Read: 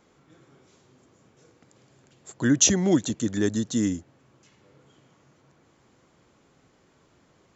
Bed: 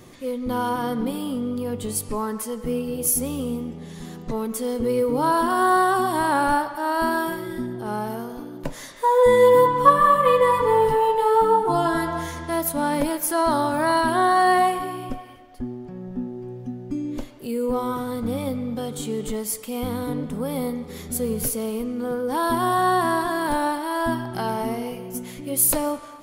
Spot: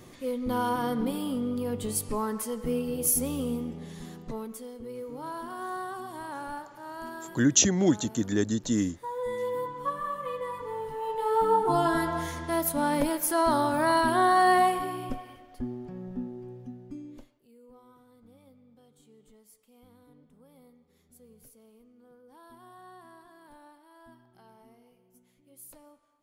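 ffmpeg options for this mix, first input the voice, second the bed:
ffmpeg -i stem1.wav -i stem2.wav -filter_complex "[0:a]adelay=4950,volume=-2dB[link_01];[1:a]volume=10.5dB,afade=type=out:start_time=3.8:duration=0.91:silence=0.199526,afade=type=in:start_time=10.94:duration=0.75:silence=0.199526,afade=type=out:start_time=15.85:duration=1.58:silence=0.0446684[link_02];[link_01][link_02]amix=inputs=2:normalize=0" out.wav

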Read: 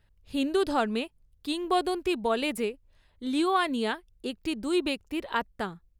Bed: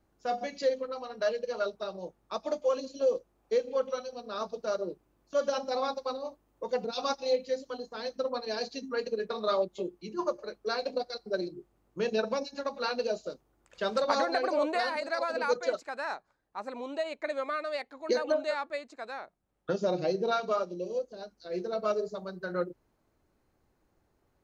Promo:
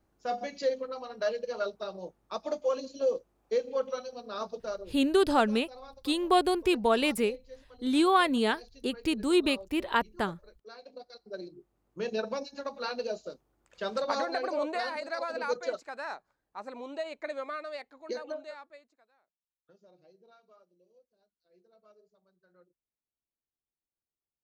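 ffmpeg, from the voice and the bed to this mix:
ffmpeg -i stem1.wav -i stem2.wav -filter_complex "[0:a]adelay=4600,volume=2dB[link_01];[1:a]volume=13dB,afade=type=out:start_time=4.57:duration=0.36:silence=0.158489,afade=type=in:start_time=10.86:duration=1.26:silence=0.199526,afade=type=out:start_time=17.27:duration=1.81:silence=0.0375837[link_02];[link_01][link_02]amix=inputs=2:normalize=0" out.wav

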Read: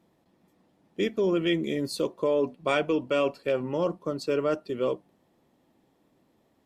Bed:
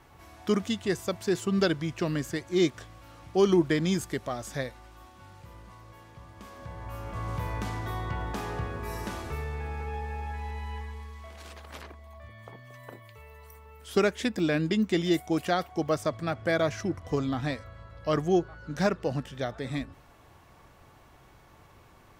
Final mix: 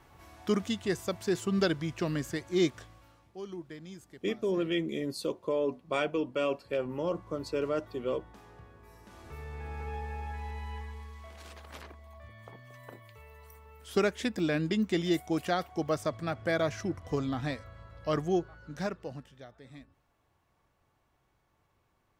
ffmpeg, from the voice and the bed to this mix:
ffmpeg -i stem1.wav -i stem2.wav -filter_complex "[0:a]adelay=3250,volume=-5dB[link_01];[1:a]volume=14dB,afade=type=out:start_time=2.7:duration=0.61:silence=0.141254,afade=type=in:start_time=9.07:duration=0.81:silence=0.149624,afade=type=out:start_time=18.09:duration=1.35:silence=0.188365[link_02];[link_01][link_02]amix=inputs=2:normalize=0" out.wav

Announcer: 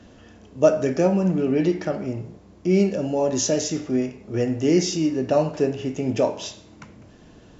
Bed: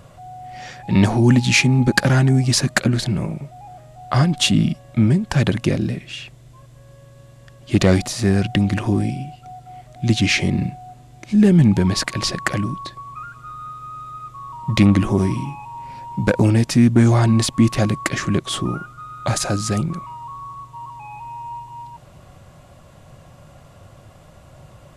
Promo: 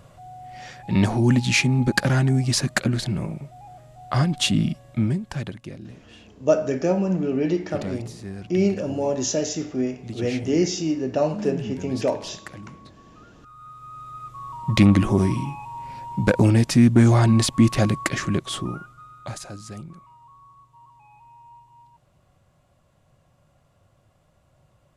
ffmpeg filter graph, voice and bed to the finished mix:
ffmpeg -i stem1.wav -i stem2.wav -filter_complex "[0:a]adelay=5850,volume=-2dB[link_01];[1:a]volume=12.5dB,afade=type=out:start_time=4.84:duration=0.74:silence=0.199526,afade=type=in:start_time=13.33:duration=1.14:silence=0.141254,afade=type=out:start_time=17.87:duration=1.6:silence=0.177828[link_02];[link_01][link_02]amix=inputs=2:normalize=0" out.wav

